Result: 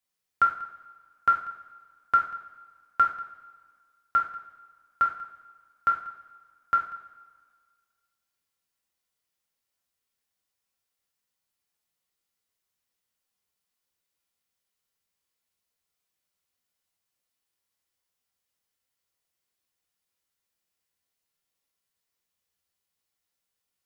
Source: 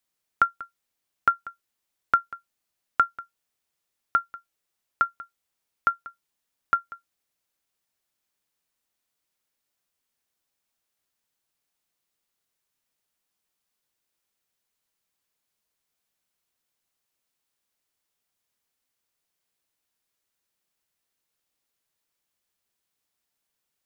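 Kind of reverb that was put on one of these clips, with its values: two-slope reverb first 0.43 s, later 1.8 s, from -18 dB, DRR -1.5 dB; trim -6.5 dB

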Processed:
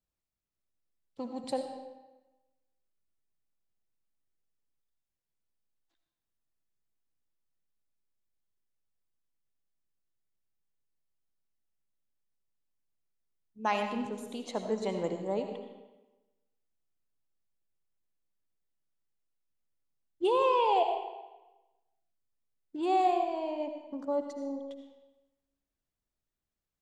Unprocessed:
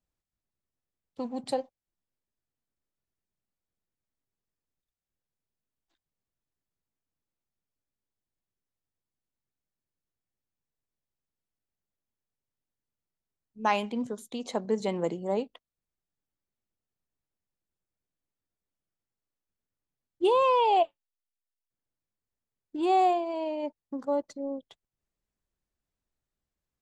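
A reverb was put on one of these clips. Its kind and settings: algorithmic reverb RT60 1.1 s, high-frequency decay 0.85×, pre-delay 40 ms, DRR 5 dB; trim -4 dB

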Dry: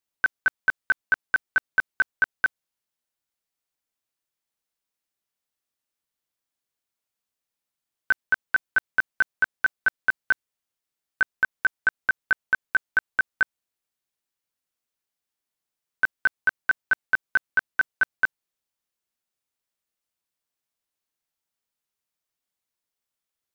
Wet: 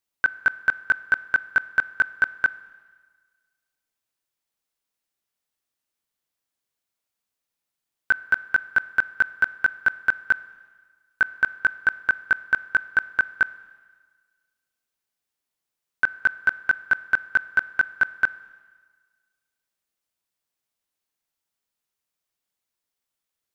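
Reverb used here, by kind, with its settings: Schroeder reverb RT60 1.5 s, combs from 25 ms, DRR 17.5 dB; trim +1.5 dB

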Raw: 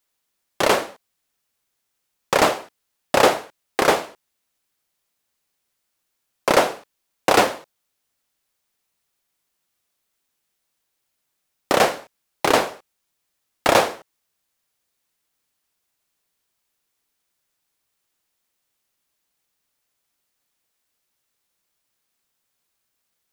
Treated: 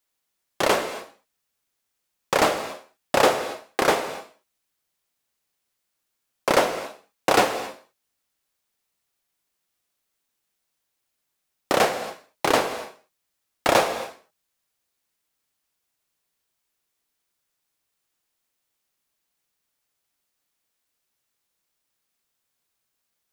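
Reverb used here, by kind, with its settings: gated-style reverb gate 300 ms flat, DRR 9.5 dB; trim -3 dB

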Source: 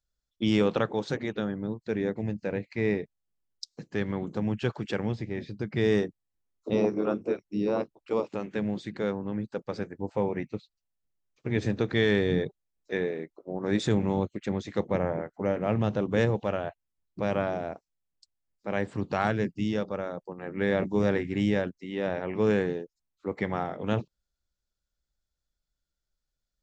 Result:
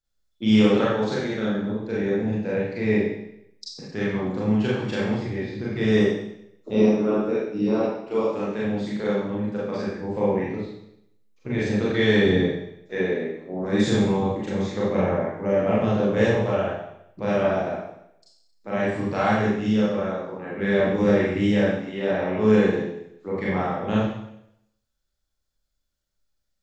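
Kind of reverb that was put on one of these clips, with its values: Schroeder reverb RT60 0.77 s, combs from 29 ms, DRR -7.5 dB; trim -2.5 dB

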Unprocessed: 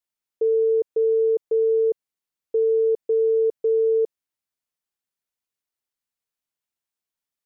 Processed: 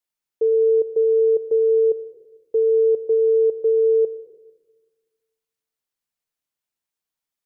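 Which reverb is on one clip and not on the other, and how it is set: simulated room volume 810 m³, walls mixed, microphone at 0.45 m; trim +1 dB

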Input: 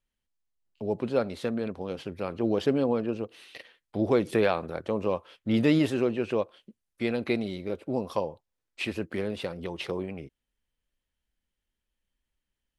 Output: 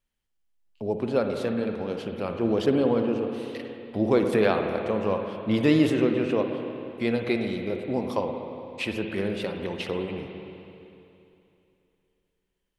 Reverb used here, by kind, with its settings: spring tank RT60 2.9 s, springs 51/56/60 ms, chirp 50 ms, DRR 4 dB; trim +1.5 dB

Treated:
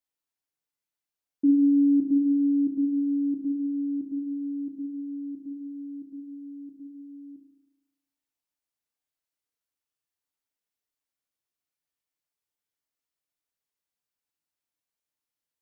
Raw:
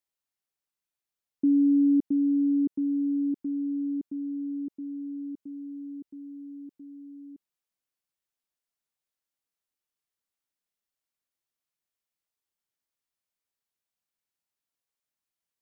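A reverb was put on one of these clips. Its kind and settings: FDN reverb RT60 0.98 s, high-frequency decay 0.8×, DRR 2.5 dB; trim -3 dB

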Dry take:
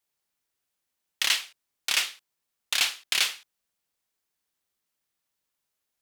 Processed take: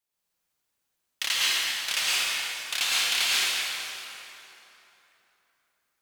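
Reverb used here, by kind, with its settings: plate-style reverb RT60 3.3 s, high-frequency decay 0.7×, pre-delay 95 ms, DRR -7.5 dB; trim -4.5 dB

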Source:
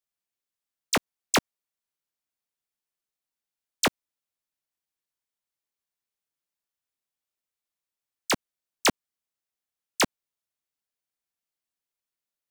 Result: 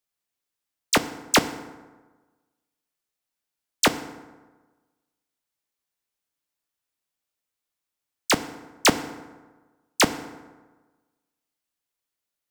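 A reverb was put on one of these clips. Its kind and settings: FDN reverb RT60 1.3 s, low-frequency decay 1×, high-frequency decay 0.55×, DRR 10.5 dB; trim +4 dB

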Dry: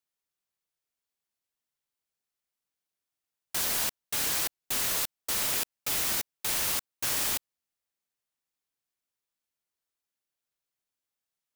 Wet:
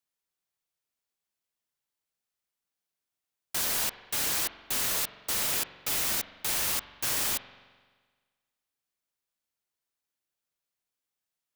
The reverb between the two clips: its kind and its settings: spring tank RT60 1.5 s, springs 43 ms, chirp 60 ms, DRR 12 dB

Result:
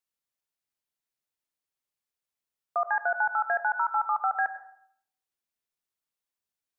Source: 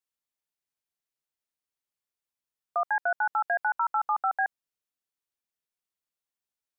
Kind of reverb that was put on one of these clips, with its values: plate-style reverb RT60 0.66 s, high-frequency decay 0.4×, pre-delay 75 ms, DRR 11 dB

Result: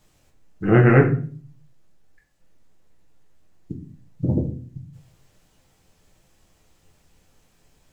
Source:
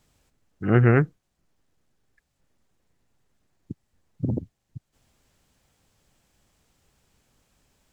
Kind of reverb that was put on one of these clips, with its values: simulated room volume 36 m³, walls mixed, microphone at 0.59 m; trim +2 dB

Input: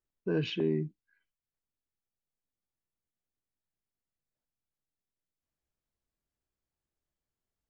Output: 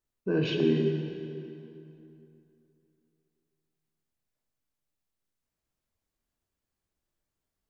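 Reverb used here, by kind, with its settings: plate-style reverb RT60 2.9 s, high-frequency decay 0.7×, DRR 1 dB; trim +2 dB

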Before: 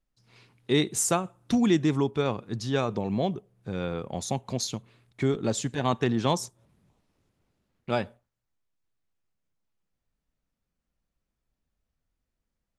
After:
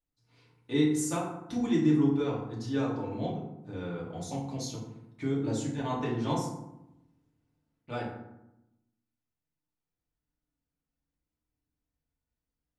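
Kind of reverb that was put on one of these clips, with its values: FDN reverb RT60 0.87 s, low-frequency decay 1.4×, high-frequency decay 0.5×, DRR -6.5 dB; trim -14 dB

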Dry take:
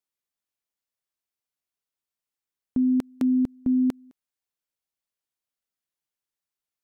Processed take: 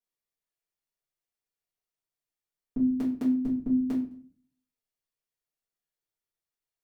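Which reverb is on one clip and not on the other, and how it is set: simulated room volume 38 m³, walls mixed, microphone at 1.7 m; trim -12.5 dB

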